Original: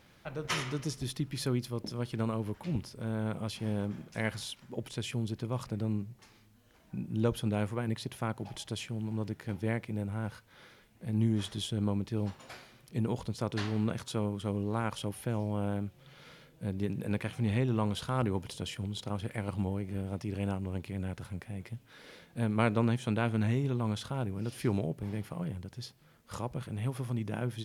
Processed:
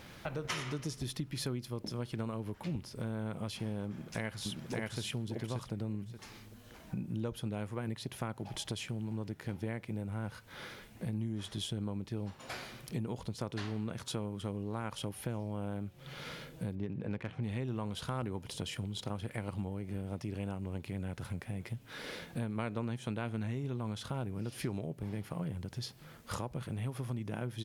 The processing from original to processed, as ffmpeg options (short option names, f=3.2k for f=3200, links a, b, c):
-filter_complex "[0:a]asplit=2[a][b];[b]afade=t=in:st=3.87:d=0.01,afade=t=out:st=5.01:d=0.01,aecho=0:1:580|1160|1740:0.891251|0.133688|0.0200531[c];[a][c]amix=inputs=2:normalize=0,asettb=1/sr,asplit=3[d][e][f];[d]atrim=end=16.754[g];[e]atrim=start=16.75:end=17.43,asetpts=PTS-STARTPTS,afade=t=in:d=0.004:c=qsin,afade=t=out:st=0.676:d=0.004:c=qsin,adynamicsmooth=sensitivity=4.5:basefreq=2.4k[h];[f]atrim=start=17.426[i];[g][h]acrossfade=d=0.004:c1=hsin:c2=qsin[j];[j][i]acrossfade=d=0.004:c1=qsin:c2=hsin,acompressor=threshold=-46dB:ratio=4,volume=9dB"